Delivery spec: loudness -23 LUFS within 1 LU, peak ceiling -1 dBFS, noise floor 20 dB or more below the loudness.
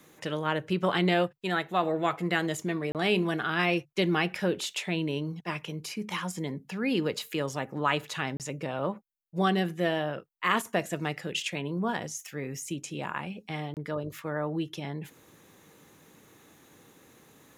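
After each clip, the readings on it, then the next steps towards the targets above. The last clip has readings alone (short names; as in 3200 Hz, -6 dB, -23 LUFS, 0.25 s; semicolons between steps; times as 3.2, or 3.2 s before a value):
dropouts 3; longest dropout 28 ms; loudness -30.5 LUFS; peak -10.5 dBFS; loudness target -23.0 LUFS
-> interpolate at 2.92/8.37/13.74, 28 ms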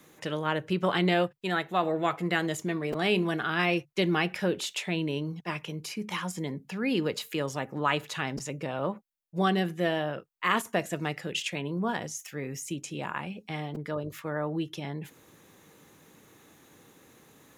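dropouts 0; loudness -30.5 LUFS; peak -10.5 dBFS; loudness target -23.0 LUFS
-> gain +7.5 dB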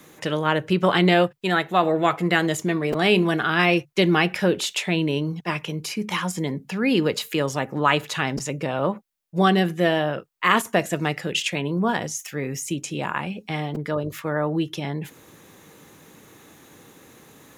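loudness -23.0 LUFS; peak -3.0 dBFS; noise floor -51 dBFS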